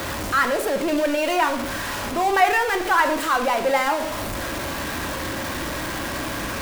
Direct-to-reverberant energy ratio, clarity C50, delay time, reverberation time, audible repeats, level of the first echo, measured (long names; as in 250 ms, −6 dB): 5.5 dB, 10.5 dB, no echo audible, 0.70 s, no echo audible, no echo audible